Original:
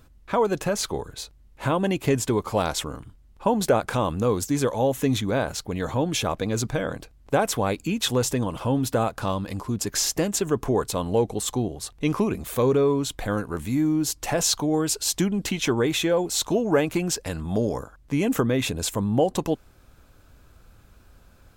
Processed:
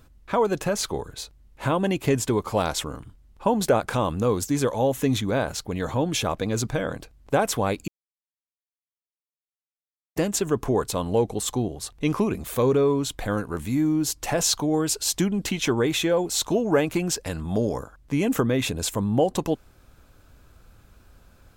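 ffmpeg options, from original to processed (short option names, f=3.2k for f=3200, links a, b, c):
-filter_complex "[0:a]asplit=3[a][b][c];[a]atrim=end=7.88,asetpts=PTS-STARTPTS,afade=t=out:st=7.876:d=0.004:c=hsin[d];[b]atrim=start=7.88:end=10.16,asetpts=PTS-STARTPTS,volume=0[e];[c]atrim=start=10.16,asetpts=PTS-STARTPTS,afade=t=in:d=0.004:c=hsin[f];[d][e][f]concat=n=3:v=0:a=1"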